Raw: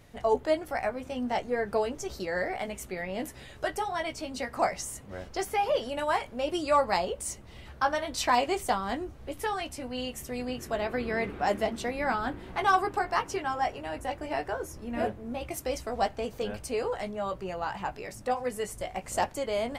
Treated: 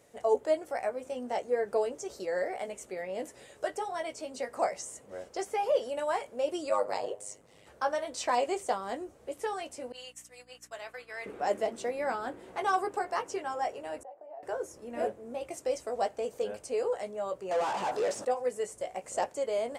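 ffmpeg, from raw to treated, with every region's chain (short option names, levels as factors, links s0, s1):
-filter_complex "[0:a]asettb=1/sr,asplit=3[s0][s1][s2];[s0]atrim=end=6.694[s3];[s1]atrim=start=6.69:end=7.67,asetpts=PTS-STARTPTS,afade=t=in:d=0.004:c=qsin,afade=t=out:st=0.976:d=0.004:c=qsin,bandreject=f=114.3:t=h:w=4,bandreject=f=228.6:t=h:w=4,bandreject=f=342.9:t=h:w=4,bandreject=f=457.2:t=h:w=4,bandreject=f=571.5:t=h:w=4,bandreject=f=685.8:t=h:w=4,bandreject=f=800.1:t=h:w=4,bandreject=f=914.4:t=h:w=4,bandreject=f=1028.7:t=h:w=4,bandreject=f=1143:t=h:w=4,bandreject=f=1257.3:t=h:w=4,bandreject=f=1371.6:t=h:w=4,bandreject=f=1485.9:t=h:w=4,bandreject=f=1600.2:t=h:w=4,bandreject=f=1714.5:t=h:w=4,bandreject=f=1828.8:t=h:w=4,bandreject=f=1943.1:t=h:w=4,bandreject=f=2057.4:t=h:w=4,bandreject=f=2171.7:t=h:w=4,bandreject=f=2286:t=h:w=4,aeval=exprs='val(0)*sin(2*PI*50*n/s)':c=same[s4];[s2]atrim=start=7.666[s5];[s3][s4]acrossfade=d=0.004:c1=hsin:c2=qsin[s6];[s6][s5]acrossfade=d=0.004:c1=qsin:c2=hsin,asettb=1/sr,asplit=3[s7][s8][s9];[s7]atrim=end=9.924[s10];[s8]atrim=start=9.92:end=11.26,asetpts=PTS-STARTPTS,afade=t=in:d=0.004:c=qsin,afade=t=out:st=1.336:d=0.004:c=qsin,highpass=1200,agate=range=0.0224:threshold=0.00794:ratio=3:release=100:detection=peak,aeval=exprs='val(0)+0.00282*(sin(2*PI*60*n/s)+sin(2*PI*2*60*n/s)/2+sin(2*PI*3*60*n/s)/3+sin(2*PI*4*60*n/s)/4+sin(2*PI*5*60*n/s)/5)':c=same[s11];[s9]atrim=start=11.256[s12];[s10][s11]acrossfade=d=0.004:c1=hsin:c2=qsin[s13];[s13][s12]acrossfade=d=0.004:c1=qsin:c2=hsin,asettb=1/sr,asplit=3[s14][s15][s16];[s14]atrim=end=14.034[s17];[s15]atrim=start=14.03:end=14.43,asetpts=PTS-STARTPTS,afade=t=in:d=0.004:c=qsin,afade=t=out:st=0.396:d=0.004:c=qsin,acompressor=threshold=0.0158:ratio=6:attack=3.2:release=140:knee=1:detection=peak,bandpass=f=700:t=q:w=3.6[s18];[s16]atrim=start=14.426[s19];[s17][s18]acrossfade=d=0.004:c1=hsin:c2=qsin[s20];[s20][s19]acrossfade=d=0.004:c1=qsin:c2=hsin,asettb=1/sr,asplit=3[s21][s22][s23];[s21]atrim=end=17.514[s24];[s22]atrim=start=17.51:end=18.25,asetpts=PTS-STARTPTS,afade=t=in:d=0.004:c=qsin,afade=t=out:st=0.736:d=0.004:c=qsin,equalizer=f=2200:t=o:w=0.58:g=-11.5,asplit=2[s25][s26];[s26]highpass=f=720:p=1,volume=35.5,asoftclip=type=tanh:threshold=0.0944[s27];[s25][s27]amix=inputs=2:normalize=0,lowpass=f=3100:p=1,volume=0.501[s28];[s23]atrim=start=18.246[s29];[s24][s28]acrossfade=d=0.004:c1=hsin:c2=qsin[s30];[s30][s29]acrossfade=d=0.004:c1=qsin:c2=hsin,highpass=f=280:p=1,acrossover=split=7100[s31][s32];[s32]acompressor=threshold=0.00178:ratio=4:attack=1:release=60[s33];[s31][s33]amix=inputs=2:normalize=0,equalizer=f=500:t=o:w=1:g=10,equalizer=f=4000:t=o:w=1:g=-3,equalizer=f=8000:t=o:w=1:g=11,volume=0.447"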